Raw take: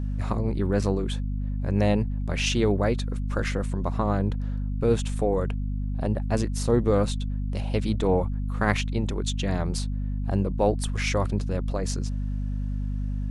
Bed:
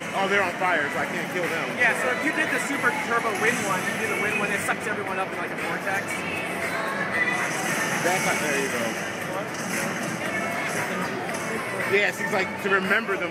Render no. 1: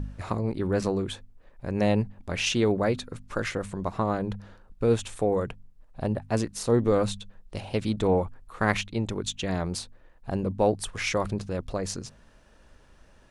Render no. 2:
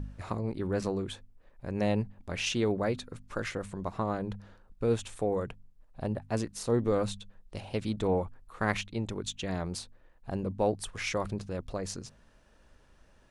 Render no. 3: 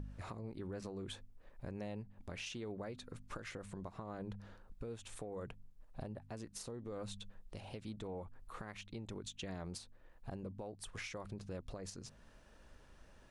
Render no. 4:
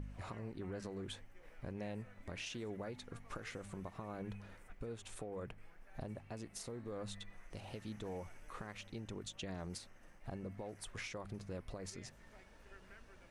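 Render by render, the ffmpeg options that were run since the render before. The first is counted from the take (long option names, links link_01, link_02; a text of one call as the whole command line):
ffmpeg -i in.wav -af "bandreject=frequency=50:width_type=h:width=4,bandreject=frequency=100:width_type=h:width=4,bandreject=frequency=150:width_type=h:width=4,bandreject=frequency=200:width_type=h:width=4,bandreject=frequency=250:width_type=h:width=4" out.wav
ffmpeg -i in.wav -af "volume=-5dB" out.wav
ffmpeg -i in.wav -af "acompressor=threshold=-36dB:ratio=12,alimiter=level_in=11dB:limit=-24dB:level=0:latency=1:release=372,volume=-11dB" out.wav
ffmpeg -i in.wav -i bed.wav -filter_complex "[1:a]volume=-39dB[link_01];[0:a][link_01]amix=inputs=2:normalize=0" out.wav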